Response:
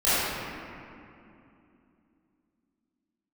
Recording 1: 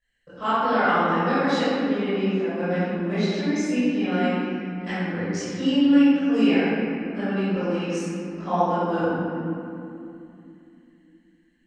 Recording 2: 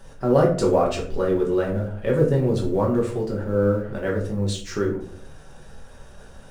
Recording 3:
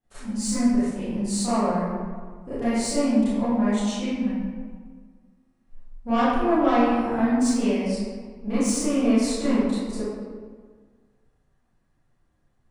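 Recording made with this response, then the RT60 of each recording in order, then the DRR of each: 1; 2.7 s, 0.55 s, 1.7 s; -16.0 dB, -3.0 dB, -15.5 dB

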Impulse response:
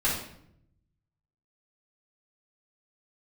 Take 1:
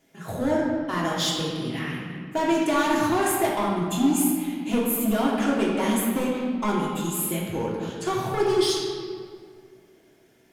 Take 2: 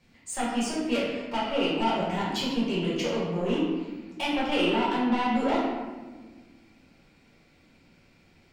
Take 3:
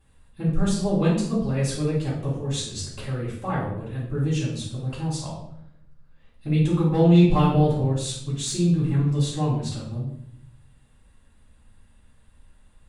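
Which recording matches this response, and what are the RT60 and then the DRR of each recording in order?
3; 2.0 s, 1.4 s, 0.70 s; -5.0 dB, -7.0 dB, -7.5 dB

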